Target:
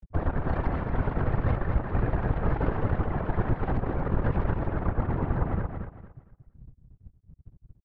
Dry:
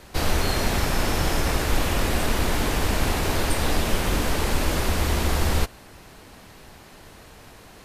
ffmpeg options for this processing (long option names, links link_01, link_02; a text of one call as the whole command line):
ffmpeg -i in.wav -filter_complex "[0:a]lowpass=1900,afftfilt=real='re*gte(hypot(re,im),0.0501)':imag='im*gte(hypot(re,im),0.0501)':win_size=1024:overlap=0.75,lowshelf=frequency=110:gain=3.5,asplit=2[link_01][link_02];[link_02]acompressor=threshold=-29dB:ratio=4,volume=-1dB[link_03];[link_01][link_03]amix=inputs=2:normalize=0,alimiter=limit=-10.5dB:level=0:latency=1:release=451,acompressor=mode=upward:threshold=-24dB:ratio=2.5,asoftclip=type=tanh:threshold=-13.5dB,aeval=exprs='0.188*(cos(1*acos(clip(val(0)/0.188,-1,1)))-cos(1*PI/2))+0.0841*(cos(2*acos(clip(val(0)/0.188,-1,1)))-cos(2*PI/2))+0.00335*(cos(6*acos(clip(val(0)/0.188,-1,1)))-cos(6*PI/2))+0.0106*(cos(7*acos(clip(val(0)/0.188,-1,1)))-cos(7*PI/2))':channel_layout=same,afftfilt=real='hypot(re,im)*cos(2*PI*random(0))':imag='hypot(re,im)*sin(2*PI*random(1))':win_size=512:overlap=0.75,asplit=2[link_04][link_05];[link_05]aecho=0:1:230|460|690|920:0.501|0.14|0.0393|0.011[link_06];[link_04][link_06]amix=inputs=2:normalize=0" out.wav